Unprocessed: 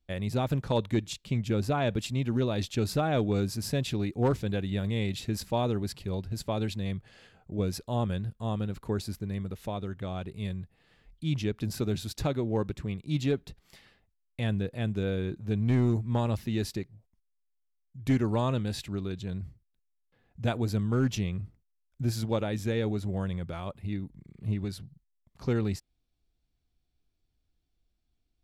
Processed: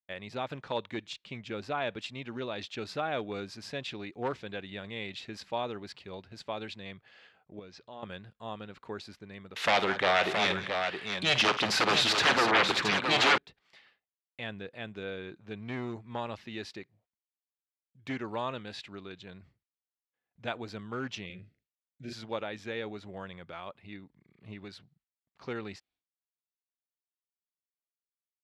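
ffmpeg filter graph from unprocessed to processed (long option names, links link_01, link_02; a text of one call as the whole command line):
ffmpeg -i in.wav -filter_complex "[0:a]asettb=1/sr,asplit=3[link_01][link_02][link_03];[link_01]atrim=end=7.594[link_04];[link_02]atrim=start=7.59:end=8.03,asetpts=PTS-STARTPTS,afade=type=in:duration=0.004:curve=qsin,afade=type=out:start_time=0.436:duration=0.004:curve=qsin,bandreject=frequency=60:width_type=h:width=6,bandreject=frequency=120:width_type=h:width=6,acompressor=threshold=-42dB:ratio=2:attack=3.2:release=140:knee=1:detection=peak,lowpass=frequency=6400:width=0.5412,lowpass=frequency=6400:width=1.3066[link_05];[link_03]atrim=start=8.026[link_06];[link_04][link_05]acrossfade=duration=0.004:curve1=hsin:curve2=qsin[link_07];[link_07][link_06]acrossfade=duration=0.004:curve1=qsin:curve2=hsin,asettb=1/sr,asplit=3[link_08][link_09][link_10];[link_08]atrim=end=9.564[link_11];[link_09]atrim=start=9.56:end=13.38,asetpts=PTS-STARTPTS,afade=type=in:duration=0.004:curve=qsin,afade=type=out:start_time=3.816:duration=0.004:curve=qsin,highpass=frequency=460:poles=1,aeval=exprs='0.141*sin(PI/2*8.91*val(0)/0.141)':channel_layout=same,aecho=1:1:52|186|671:0.237|0.178|0.501,atrim=end_sample=168462[link_12];[link_10]atrim=start=13.376[link_13];[link_11][link_12]acrossfade=duration=0.004:curve1=hsin:curve2=qsin[link_14];[link_14][link_13]acrossfade=duration=0.004:curve1=qsin:curve2=hsin,asettb=1/sr,asplit=3[link_15][link_16][link_17];[link_15]atrim=end=21.264[link_18];[link_16]atrim=start=21.26:end=22.13,asetpts=PTS-STARTPTS,afade=type=in:duration=0.004:curve=qsin,afade=type=out:start_time=0.866:duration=0.004:curve=qsin,asuperstop=centerf=1000:order=4:qfactor=0.9,asplit=2[link_19][link_20];[link_20]adelay=38,volume=-3.5dB[link_21];[link_19][link_21]amix=inputs=2:normalize=0,atrim=end_sample=38367[link_22];[link_17]atrim=start=22.126[link_23];[link_18][link_22]acrossfade=duration=0.004:curve1=hsin:curve2=qsin[link_24];[link_24][link_23]acrossfade=duration=0.004:curve1=qsin:curve2=hsin,lowpass=3300,agate=range=-33dB:threshold=-57dB:ratio=3:detection=peak,highpass=frequency=1200:poles=1,volume=2.5dB" out.wav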